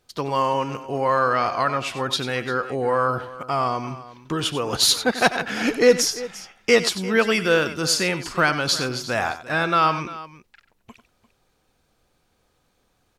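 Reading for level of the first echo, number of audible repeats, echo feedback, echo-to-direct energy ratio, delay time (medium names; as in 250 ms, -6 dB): -12.5 dB, 2, no regular repeats, -11.0 dB, 93 ms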